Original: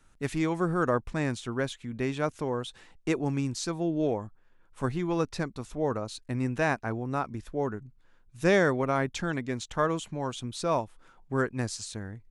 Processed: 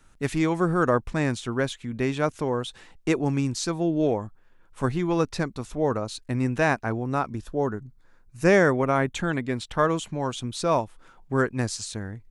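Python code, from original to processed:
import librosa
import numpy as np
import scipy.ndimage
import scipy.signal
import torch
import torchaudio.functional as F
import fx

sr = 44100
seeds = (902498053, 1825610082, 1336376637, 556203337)

y = fx.peak_eq(x, sr, hz=fx.line((7.35, 2000.0), (9.78, 7000.0)), db=-12.5, octaves=0.29, at=(7.35, 9.78), fade=0.02)
y = y * librosa.db_to_amplitude(4.5)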